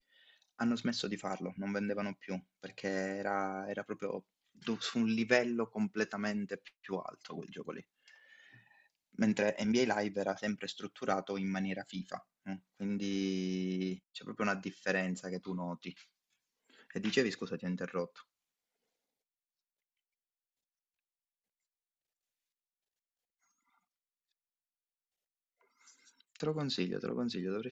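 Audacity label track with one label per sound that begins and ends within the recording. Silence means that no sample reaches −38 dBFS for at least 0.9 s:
9.190000	15.900000	sound
16.960000	18.050000	sound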